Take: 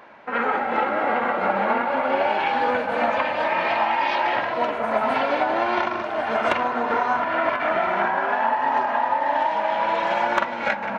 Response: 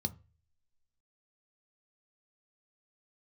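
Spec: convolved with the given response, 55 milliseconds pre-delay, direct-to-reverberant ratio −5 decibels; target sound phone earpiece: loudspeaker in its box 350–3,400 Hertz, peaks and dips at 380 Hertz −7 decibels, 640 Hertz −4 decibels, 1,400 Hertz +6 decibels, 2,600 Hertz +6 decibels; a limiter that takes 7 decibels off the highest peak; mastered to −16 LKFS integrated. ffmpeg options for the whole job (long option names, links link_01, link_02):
-filter_complex "[0:a]alimiter=limit=-14.5dB:level=0:latency=1,asplit=2[link_01][link_02];[1:a]atrim=start_sample=2205,adelay=55[link_03];[link_02][link_03]afir=irnorm=-1:irlink=0,volume=4.5dB[link_04];[link_01][link_04]amix=inputs=2:normalize=0,highpass=350,equalizer=frequency=380:width_type=q:width=4:gain=-7,equalizer=frequency=640:width_type=q:width=4:gain=-4,equalizer=frequency=1400:width_type=q:width=4:gain=6,equalizer=frequency=2600:width_type=q:width=4:gain=6,lowpass=frequency=3400:width=0.5412,lowpass=frequency=3400:width=1.3066,volume=1dB"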